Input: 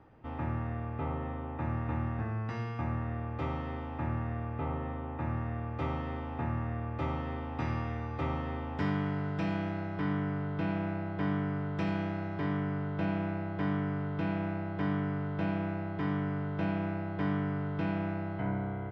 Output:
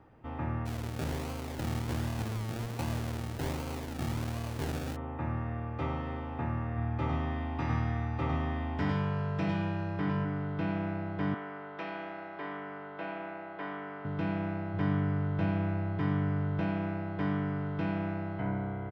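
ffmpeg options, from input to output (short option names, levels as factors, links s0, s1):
-filter_complex "[0:a]asplit=3[s0][s1][s2];[s0]afade=t=out:st=0.65:d=0.02[s3];[s1]acrusher=samples=34:mix=1:aa=0.000001:lfo=1:lforange=20.4:lforate=1.3,afade=t=in:st=0.65:d=0.02,afade=t=out:st=4.95:d=0.02[s4];[s2]afade=t=in:st=4.95:d=0.02[s5];[s3][s4][s5]amix=inputs=3:normalize=0,asplit=3[s6][s7][s8];[s6]afade=t=out:st=6.76:d=0.02[s9];[s7]aecho=1:1:104:0.668,afade=t=in:st=6.76:d=0.02,afade=t=out:st=10.24:d=0.02[s10];[s8]afade=t=in:st=10.24:d=0.02[s11];[s9][s10][s11]amix=inputs=3:normalize=0,asettb=1/sr,asplit=3[s12][s13][s14];[s12]atrim=end=11.344[s15];[s13]atrim=start=11.34:end=14.05,asetpts=PTS-STARTPTS,afade=t=in:d=0.004:c=qsin,afade=t=out:st=2.706:d=0.004:c=qsin,highpass=470,lowpass=3500[s16];[s14]atrim=start=14.046[s17];[s15][s16]acrossfade=d=0.004:c1=hsin:c2=qsin[s18];[s18][s17]acrossfade=d=0.004:c1=qsin:c2=hsin,asettb=1/sr,asplit=3[s19][s20][s21];[s19]atrim=end=14.734[s22];[s20]atrim=start=14.73:end=16.61,asetpts=PTS-STARTPTS,afade=t=in:d=0.004:c=qsin,afade=t=out:st=1.876:d=0.004:c=qsin,equalizer=f=110:t=o:w=0.62:g=9.5[s23];[s21]atrim=start=16.606[s24];[s22][s23]acrossfade=d=0.004:c1=hsin:c2=qsin[s25];[s25][s24]acrossfade=d=0.004:c1=qsin:c2=hsin"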